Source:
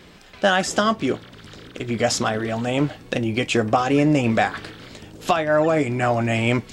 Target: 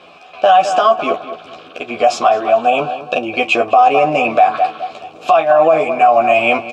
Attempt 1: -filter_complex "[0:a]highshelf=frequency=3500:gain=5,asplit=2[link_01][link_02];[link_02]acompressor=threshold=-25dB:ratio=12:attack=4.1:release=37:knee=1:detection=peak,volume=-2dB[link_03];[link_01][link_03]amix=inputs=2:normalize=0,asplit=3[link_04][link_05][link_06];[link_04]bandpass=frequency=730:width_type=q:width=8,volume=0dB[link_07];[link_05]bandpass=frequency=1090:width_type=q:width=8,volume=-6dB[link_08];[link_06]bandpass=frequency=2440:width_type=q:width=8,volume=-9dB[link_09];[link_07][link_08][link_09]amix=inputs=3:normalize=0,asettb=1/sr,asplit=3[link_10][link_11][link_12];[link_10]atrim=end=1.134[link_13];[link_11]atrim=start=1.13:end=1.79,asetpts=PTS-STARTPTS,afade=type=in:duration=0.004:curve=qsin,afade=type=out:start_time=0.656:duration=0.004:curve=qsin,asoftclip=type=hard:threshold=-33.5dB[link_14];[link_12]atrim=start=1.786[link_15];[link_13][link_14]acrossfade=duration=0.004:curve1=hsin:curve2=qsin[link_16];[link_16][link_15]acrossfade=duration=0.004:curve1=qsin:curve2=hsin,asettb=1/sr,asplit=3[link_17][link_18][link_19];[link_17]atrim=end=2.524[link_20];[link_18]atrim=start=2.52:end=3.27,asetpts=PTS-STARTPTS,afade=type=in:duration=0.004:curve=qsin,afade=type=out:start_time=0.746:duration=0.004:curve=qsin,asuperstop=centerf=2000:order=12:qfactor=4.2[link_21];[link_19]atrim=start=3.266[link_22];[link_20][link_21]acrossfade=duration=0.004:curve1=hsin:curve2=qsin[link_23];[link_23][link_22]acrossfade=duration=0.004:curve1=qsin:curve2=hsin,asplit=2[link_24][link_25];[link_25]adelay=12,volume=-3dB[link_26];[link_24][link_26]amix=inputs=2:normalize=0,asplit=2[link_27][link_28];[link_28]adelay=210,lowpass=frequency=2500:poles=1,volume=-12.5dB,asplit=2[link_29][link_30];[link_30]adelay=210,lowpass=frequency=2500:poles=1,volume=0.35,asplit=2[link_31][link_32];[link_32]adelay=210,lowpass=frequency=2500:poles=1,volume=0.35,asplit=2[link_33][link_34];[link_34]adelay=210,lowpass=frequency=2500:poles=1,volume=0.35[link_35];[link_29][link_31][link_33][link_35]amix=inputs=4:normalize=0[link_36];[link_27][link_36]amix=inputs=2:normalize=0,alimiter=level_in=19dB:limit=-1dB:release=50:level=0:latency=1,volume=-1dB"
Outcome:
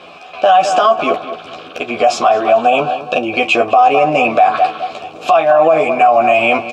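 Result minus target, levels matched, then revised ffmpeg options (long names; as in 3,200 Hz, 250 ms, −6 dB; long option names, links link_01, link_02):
downward compressor: peak gain reduction +13 dB
-filter_complex "[0:a]asplit=3[link_01][link_02][link_03];[link_01]bandpass=frequency=730:width_type=q:width=8,volume=0dB[link_04];[link_02]bandpass=frequency=1090:width_type=q:width=8,volume=-6dB[link_05];[link_03]bandpass=frequency=2440:width_type=q:width=8,volume=-9dB[link_06];[link_04][link_05][link_06]amix=inputs=3:normalize=0,highshelf=frequency=3500:gain=5,asettb=1/sr,asplit=3[link_07][link_08][link_09];[link_07]atrim=end=1.134[link_10];[link_08]atrim=start=1.13:end=1.79,asetpts=PTS-STARTPTS,afade=type=in:duration=0.004:curve=qsin,afade=type=out:start_time=0.656:duration=0.004:curve=qsin,asoftclip=type=hard:threshold=-33.5dB[link_11];[link_09]atrim=start=1.786[link_12];[link_10][link_11]acrossfade=duration=0.004:curve1=hsin:curve2=qsin[link_13];[link_13][link_12]acrossfade=duration=0.004:curve1=qsin:curve2=hsin,asettb=1/sr,asplit=3[link_14][link_15][link_16];[link_14]atrim=end=2.524[link_17];[link_15]atrim=start=2.52:end=3.27,asetpts=PTS-STARTPTS,afade=type=in:duration=0.004:curve=qsin,afade=type=out:start_time=0.746:duration=0.004:curve=qsin,asuperstop=centerf=2000:order=12:qfactor=4.2[link_18];[link_16]atrim=start=3.266[link_19];[link_17][link_18]acrossfade=duration=0.004:curve1=hsin:curve2=qsin[link_20];[link_20][link_19]acrossfade=duration=0.004:curve1=qsin:curve2=hsin,asplit=2[link_21][link_22];[link_22]adelay=12,volume=-3dB[link_23];[link_21][link_23]amix=inputs=2:normalize=0,asplit=2[link_24][link_25];[link_25]adelay=210,lowpass=frequency=2500:poles=1,volume=-12.5dB,asplit=2[link_26][link_27];[link_27]adelay=210,lowpass=frequency=2500:poles=1,volume=0.35,asplit=2[link_28][link_29];[link_29]adelay=210,lowpass=frequency=2500:poles=1,volume=0.35,asplit=2[link_30][link_31];[link_31]adelay=210,lowpass=frequency=2500:poles=1,volume=0.35[link_32];[link_26][link_28][link_30][link_32]amix=inputs=4:normalize=0[link_33];[link_24][link_33]amix=inputs=2:normalize=0,alimiter=level_in=19dB:limit=-1dB:release=50:level=0:latency=1,volume=-1dB"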